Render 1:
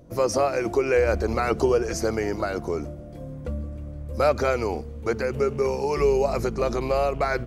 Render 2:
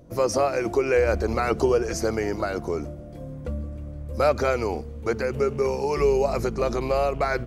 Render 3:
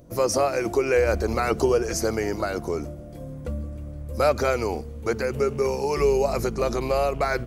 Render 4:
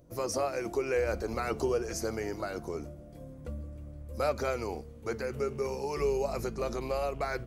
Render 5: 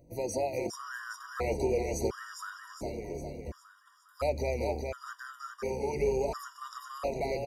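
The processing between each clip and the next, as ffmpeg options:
-af anull
-af "highshelf=f=7.4k:g=9.5"
-af "flanger=delay=2:depth=7.2:regen=-85:speed=0.27:shape=triangular,volume=-4.5dB"
-filter_complex "[0:a]asplit=2[a][b];[b]aecho=0:1:408|816|1224|1632|2040|2448|2856:0.596|0.31|0.161|0.0838|0.0436|0.0226|0.0118[c];[a][c]amix=inputs=2:normalize=0,afftfilt=real='re*gt(sin(2*PI*0.71*pts/sr)*(1-2*mod(floor(b*sr/1024/960),2)),0)':imag='im*gt(sin(2*PI*0.71*pts/sr)*(1-2*mod(floor(b*sr/1024/960),2)),0)':win_size=1024:overlap=0.75"

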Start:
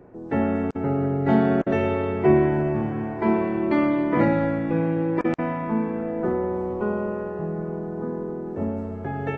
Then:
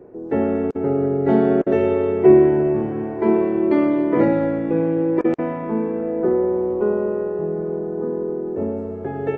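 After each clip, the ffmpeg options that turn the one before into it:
-af "equalizer=f=410:w=1.3:g=11.5,volume=-3dB"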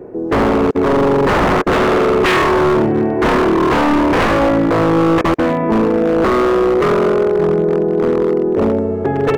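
-filter_complex "[0:a]asplit=2[a][b];[b]acontrast=74,volume=1dB[c];[a][c]amix=inputs=2:normalize=0,aeval=exprs='0.398*(abs(mod(val(0)/0.398+3,4)-2)-1)':c=same"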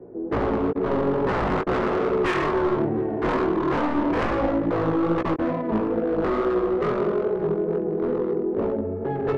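-filter_complex "[0:a]flanger=delay=15.5:depth=5.8:speed=2.3,acrossover=split=380[a][b];[b]adynamicsmooth=sensitivity=0.5:basefreq=1.4k[c];[a][c]amix=inputs=2:normalize=0,volume=-6.5dB"

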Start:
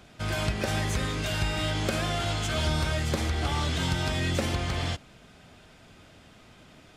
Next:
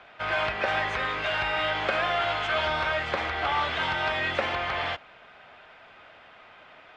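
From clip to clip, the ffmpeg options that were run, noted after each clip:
-filter_complex "[0:a]lowpass=6.1k,acrossover=split=560 3000:gain=0.0794 1 0.0631[a][b][c];[a][b][c]amix=inputs=3:normalize=0,volume=8.5dB"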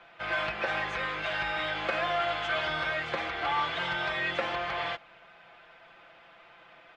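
-af "aecho=1:1:5.9:0.64,volume=-5dB"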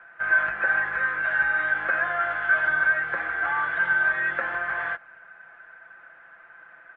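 -af "lowpass=f=1.6k:t=q:w=8.9,volume=-4.5dB"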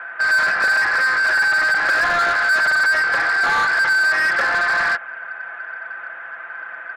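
-filter_complex "[0:a]asplit=2[a][b];[b]highpass=f=720:p=1,volume=24dB,asoftclip=type=tanh:threshold=-10dB[c];[a][c]amix=inputs=2:normalize=0,lowpass=f=3.1k:p=1,volume=-6dB"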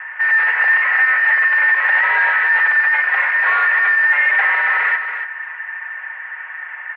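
-af "aecho=1:1:282|564|846:0.398|0.0637|0.0102,highpass=f=170:t=q:w=0.5412,highpass=f=170:t=q:w=1.307,lowpass=f=2.7k:t=q:w=0.5176,lowpass=f=2.7k:t=q:w=0.7071,lowpass=f=2.7k:t=q:w=1.932,afreqshift=250,volume=2dB"

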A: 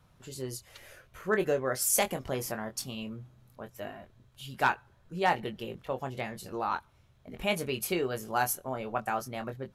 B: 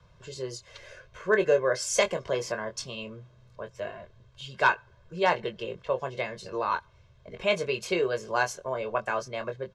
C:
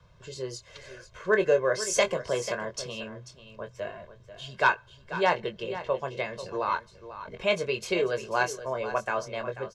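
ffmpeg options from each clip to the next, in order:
-filter_complex "[0:a]lowpass=f=6.6k:w=0.5412,lowpass=f=6.6k:w=1.3066,aecho=1:1:1.9:0.74,acrossover=split=160|930|1900[a][b][c][d];[a]acompressor=threshold=-55dB:ratio=6[e];[e][b][c][d]amix=inputs=4:normalize=0,volume=2.5dB"
-af "aecho=1:1:490:0.224"

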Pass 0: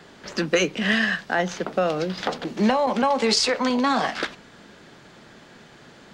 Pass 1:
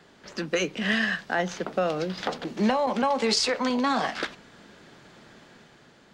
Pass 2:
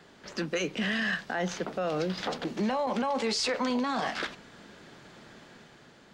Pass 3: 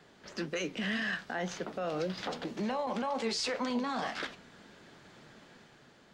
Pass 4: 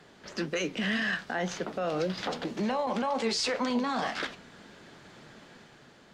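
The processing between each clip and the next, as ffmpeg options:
-af "dynaudnorm=f=140:g=9:m=4.5dB,volume=-7.5dB"
-af "alimiter=limit=-21.5dB:level=0:latency=1:release=13"
-af "flanger=delay=6.2:depth=6.7:regen=73:speed=1.9:shape=triangular"
-af "volume=4dB" -ar 32000 -c:a ac3 -b:a 320k

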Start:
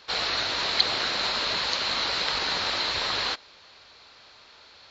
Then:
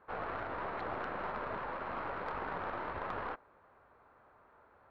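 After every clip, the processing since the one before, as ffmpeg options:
-af "lowpass=f=1.4k:w=0.5412,lowpass=f=1.4k:w=1.3066,aeval=exprs='(tanh(20*val(0)+0.55)-tanh(0.55))/20':c=same,volume=-2.5dB"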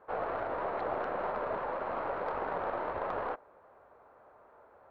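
-af "equalizer=f=580:w=0.85:g=10.5,volume=-2dB"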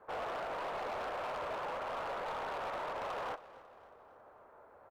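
-filter_complex "[0:a]acrossover=split=420|650[a][b][c];[a]acompressor=threshold=-54dB:ratio=6[d];[d][b][c]amix=inputs=3:normalize=0,asoftclip=type=hard:threshold=-36.5dB,aecho=1:1:274|548|822|1096:0.126|0.0642|0.0327|0.0167"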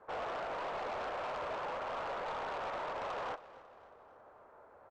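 -af "lowpass=f=7.8k:w=0.5412,lowpass=f=7.8k:w=1.3066"

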